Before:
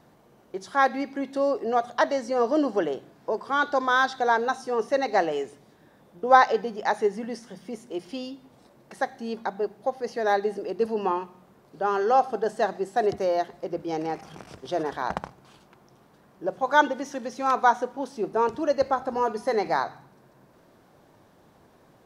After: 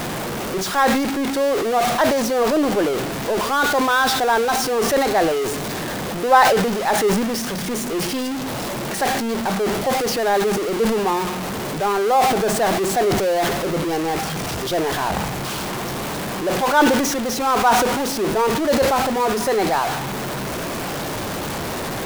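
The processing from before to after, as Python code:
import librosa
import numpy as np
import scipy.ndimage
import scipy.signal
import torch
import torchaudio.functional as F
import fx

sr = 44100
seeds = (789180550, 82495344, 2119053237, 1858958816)

y = x + 0.5 * 10.0 ** (-21.5 / 20.0) * np.sign(x)
y = fx.sustainer(y, sr, db_per_s=33.0)
y = y * 10.0 ** (1.0 / 20.0)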